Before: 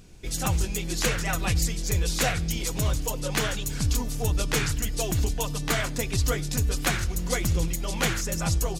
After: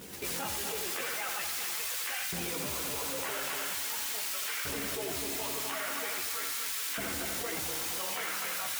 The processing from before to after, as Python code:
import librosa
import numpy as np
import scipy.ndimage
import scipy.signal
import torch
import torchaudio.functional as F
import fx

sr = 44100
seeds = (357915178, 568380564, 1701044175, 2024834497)

y = fx.doppler_pass(x, sr, speed_mps=20, closest_m=1.6, pass_at_s=2.54)
y = scipy.signal.savgol_filter(y, 25, 4, mode='constant')
y = fx.low_shelf(y, sr, hz=300.0, db=6.5)
y = fx.mod_noise(y, sr, seeds[0], snr_db=10)
y = fx.chorus_voices(y, sr, voices=6, hz=0.44, base_ms=13, depth_ms=2.4, mix_pct=55)
y = fx.echo_heads(y, sr, ms=82, heads='first and third', feedback_pct=49, wet_db=-8.0)
y = fx.filter_lfo_highpass(y, sr, shape='saw_up', hz=0.43, low_hz=250.0, high_hz=1500.0, q=0.75)
y = fx.env_flatten(y, sr, amount_pct=100)